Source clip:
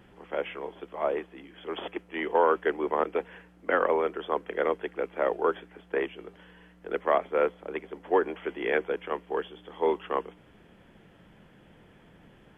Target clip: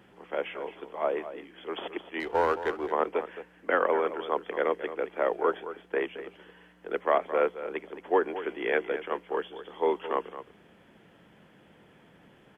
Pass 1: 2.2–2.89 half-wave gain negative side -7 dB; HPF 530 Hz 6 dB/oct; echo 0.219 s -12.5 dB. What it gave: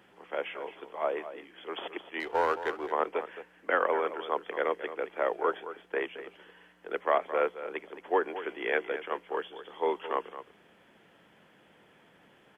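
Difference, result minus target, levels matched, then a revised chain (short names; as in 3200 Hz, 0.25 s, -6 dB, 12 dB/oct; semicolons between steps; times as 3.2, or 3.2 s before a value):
125 Hz band -5.5 dB
2.2–2.89 half-wave gain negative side -7 dB; HPF 170 Hz 6 dB/oct; echo 0.219 s -12.5 dB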